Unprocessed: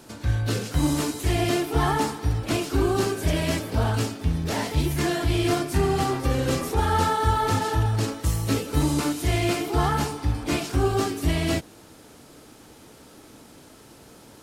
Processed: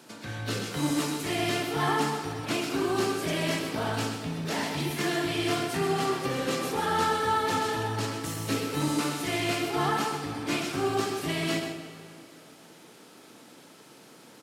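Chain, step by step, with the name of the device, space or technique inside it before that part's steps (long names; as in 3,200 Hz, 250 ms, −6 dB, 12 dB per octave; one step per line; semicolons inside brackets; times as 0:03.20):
PA in a hall (high-pass filter 140 Hz 24 dB per octave; parametric band 2,500 Hz +4.5 dB 2.5 octaves; single-tap delay 127 ms −8 dB; convolution reverb RT60 2.4 s, pre-delay 23 ms, DRR 7.5 dB)
level −5.5 dB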